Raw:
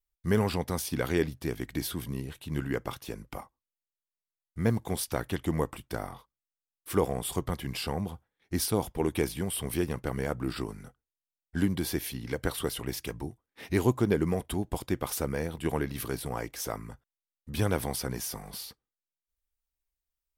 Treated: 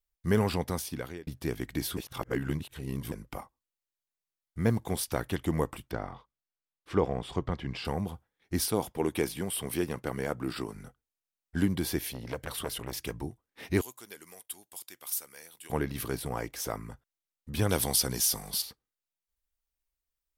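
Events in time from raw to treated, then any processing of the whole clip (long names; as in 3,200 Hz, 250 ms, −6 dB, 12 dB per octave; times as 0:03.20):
0:00.67–0:01.27: fade out
0:01.97–0:03.12: reverse
0:05.91–0:07.85: high-frequency loss of the air 150 metres
0:08.69–0:10.75: high-pass filter 160 Hz 6 dB per octave
0:12.00–0:12.98: saturating transformer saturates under 1,500 Hz
0:13.81–0:15.70: first difference
0:17.69–0:18.62: flat-topped bell 6,500 Hz +10 dB 2.5 octaves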